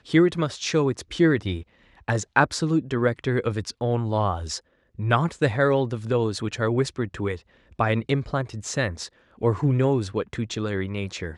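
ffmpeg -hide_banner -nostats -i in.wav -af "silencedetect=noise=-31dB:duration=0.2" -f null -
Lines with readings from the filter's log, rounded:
silence_start: 1.61
silence_end: 2.08 | silence_duration: 0.47
silence_start: 4.58
silence_end: 4.99 | silence_duration: 0.41
silence_start: 7.36
silence_end: 7.79 | silence_duration: 0.43
silence_start: 9.06
silence_end: 9.41 | silence_duration: 0.35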